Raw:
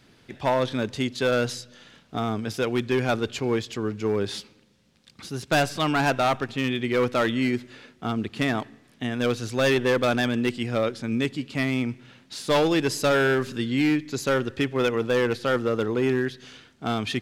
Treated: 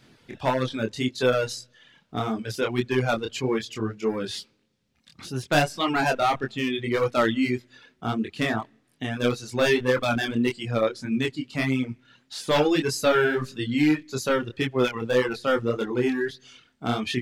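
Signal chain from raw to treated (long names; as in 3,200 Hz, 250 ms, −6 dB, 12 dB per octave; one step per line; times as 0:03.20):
chorus effect 1.7 Hz, depth 4.7 ms
reverb reduction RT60 1.2 s
level +4 dB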